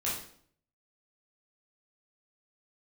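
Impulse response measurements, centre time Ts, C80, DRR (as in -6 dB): 45 ms, 7.5 dB, -7.5 dB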